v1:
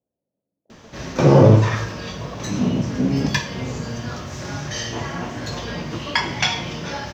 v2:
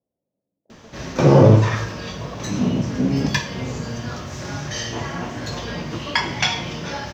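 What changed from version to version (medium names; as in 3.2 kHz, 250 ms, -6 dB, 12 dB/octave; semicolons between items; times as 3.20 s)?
speech: send +6.0 dB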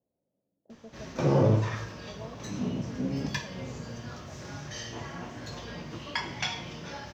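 background -11.5 dB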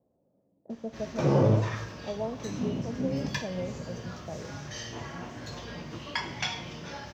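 speech +11.5 dB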